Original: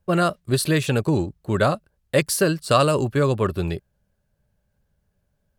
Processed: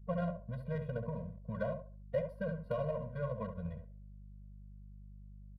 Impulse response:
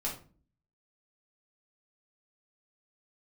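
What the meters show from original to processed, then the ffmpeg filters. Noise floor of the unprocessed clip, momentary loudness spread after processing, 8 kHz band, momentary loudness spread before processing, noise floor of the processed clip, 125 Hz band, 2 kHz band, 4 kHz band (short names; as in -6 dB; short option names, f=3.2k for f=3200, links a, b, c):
-72 dBFS, 18 LU, under -40 dB, 8 LU, -52 dBFS, -16.0 dB, -22.5 dB, under -30 dB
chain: -filter_complex "[0:a]highpass=120,highshelf=f=7k:g=-10.5,acrossover=split=590|2000[a][b][c];[a]acompressor=threshold=-30dB:ratio=4[d];[b]acompressor=threshold=-29dB:ratio=4[e];[c]acompressor=threshold=-37dB:ratio=4[f];[d][e][f]amix=inputs=3:normalize=0,flanger=delay=2.8:depth=9.4:regen=83:speed=1.7:shape=sinusoidal,asplit=2[g][h];[h]adelay=69,lowpass=f=1.7k:p=1,volume=-5.5dB,asplit=2[i][j];[j]adelay=69,lowpass=f=1.7k:p=1,volume=0.32,asplit=2[k][l];[l]adelay=69,lowpass=f=1.7k:p=1,volume=0.32,asplit=2[m][n];[n]adelay=69,lowpass=f=1.7k:p=1,volume=0.32[o];[g][i][k][m][o]amix=inputs=5:normalize=0,acrossover=split=380[p][q];[p]aeval=exprs='val(0)*gte(abs(val(0)),0.00501)':c=same[r];[r][q]amix=inputs=2:normalize=0,aeval=exprs='val(0)+0.00355*(sin(2*PI*50*n/s)+sin(2*PI*2*50*n/s)/2+sin(2*PI*3*50*n/s)/3+sin(2*PI*4*50*n/s)/4+sin(2*PI*5*50*n/s)/5)':c=same,adynamicsmooth=sensitivity=0.5:basefreq=690,aexciter=amount=15.1:drive=9.9:freq=11k,afftfilt=real='re*eq(mod(floor(b*sr/1024/230),2),0)':imag='im*eq(mod(floor(b*sr/1024/230),2),0)':win_size=1024:overlap=0.75,volume=-1.5dB"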